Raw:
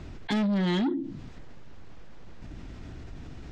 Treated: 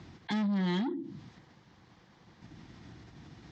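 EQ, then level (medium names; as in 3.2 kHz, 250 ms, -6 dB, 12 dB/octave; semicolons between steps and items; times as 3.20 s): dynamic bell 4 kHz, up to -3 dB, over -51 dBFS, Q 0.92; cabinet simulation 140–6500 Hz, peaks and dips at 260 Hz -6 dB, 420 Hz -8 dB, 600 Hz -9 dB, 1.4 kHz -5 dB, 2.6 kHz -6 dB; -1.5 dB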